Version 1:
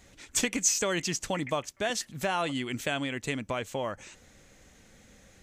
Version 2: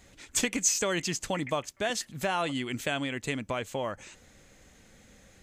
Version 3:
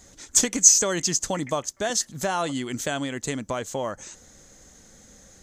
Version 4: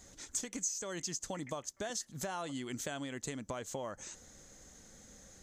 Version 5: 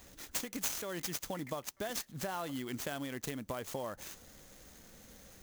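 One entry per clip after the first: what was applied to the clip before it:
band-stop 5.7 kHz, Q 24
fifteen-band graphic EQ 100 Hz -3 dB, 2.5 kHz -9 dB, 6.3 kHz +9 dB; trim +4 dB
compression 4:1, threshold -32 dBFS, peak gain reduction 19 dB; trim -5.5 dB
sampling jitter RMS 0.03 ms; trim +1 dB

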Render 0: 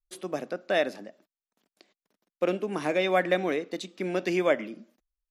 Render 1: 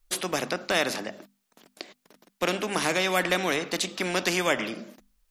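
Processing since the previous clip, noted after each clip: hum notches 50/100/150/200/250 Hz; spectrum-flattening compressor 2:1; trim +1.5 dB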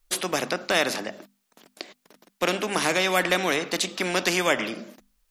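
bass shelf 160 Hz -4 dB; trim +2.5 dB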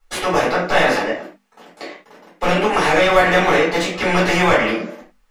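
overdrive pedal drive 18 dB, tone 1.1 kHz, clips at -6.5 dBFS; reverberation, pre-delay 4 ms, DRR -8 dB; trim -6.5 dB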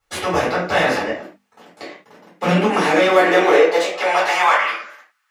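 high-pass sweep 70 Hz -> 1.4 kHz, 1.57–4.95 s; trim -2 dB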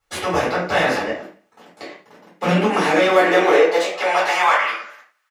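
feedback delay 89 ms, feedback 51%, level -22.5 dB; trim -1 dB

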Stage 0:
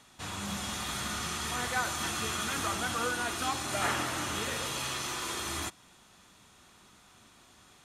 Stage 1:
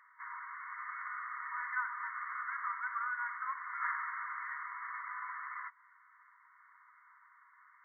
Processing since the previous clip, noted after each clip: in parallel at +1 dB: compression, threshold -42 dBFS, peak gain reduction 15 dB; on the sum: FFT band-pass 940–2200 Hz; trim -4.5 dB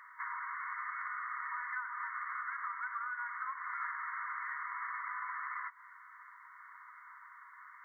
compression 6:1, threshold -46 dBFS, peak gain reduction 14.5 dB; trim +8.5 dB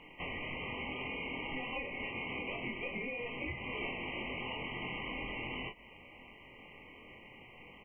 ring modulator 970 Hz; early reflections 23 ms -3.5 dB, 39 ms -8 dB; trim +1 dB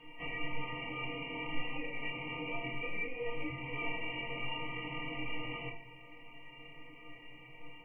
inharmonic resonator 140 Hz, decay 0.23 s, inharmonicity 0.03; reverberation RT60 0.60 s, pre-delay 6 ms, DRR 3.5 dB; trim +8 dB

